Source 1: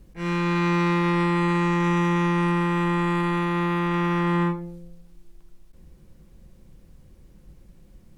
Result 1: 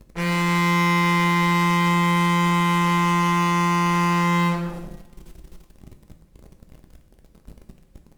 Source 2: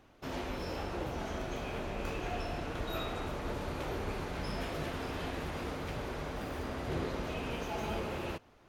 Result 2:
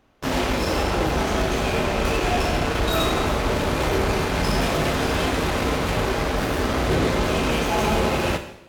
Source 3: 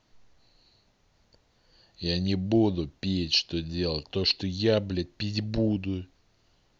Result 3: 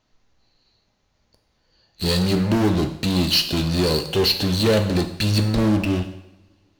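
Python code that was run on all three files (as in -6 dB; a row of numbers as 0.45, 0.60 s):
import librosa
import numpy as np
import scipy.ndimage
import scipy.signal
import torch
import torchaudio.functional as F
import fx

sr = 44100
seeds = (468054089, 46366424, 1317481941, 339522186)

p1 = fx.fuzz(x, sr, gain_db=38.0, gate_db=-43.0)
p2 = x + F.gain(torch.from_numpy(p1), -6.0).numpy()
p3 = fx.rev_double_slope(p2, sr, seeds[0], early_s=0.79, late_s=2.8, knee_db=-27, drr_db=5.5)
y = p3 * 10.0 ** (-22 / 20.0) / np.sqrt(np.mean(np.square(p3)))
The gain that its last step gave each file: -5.5, +0.5, -2.0 dB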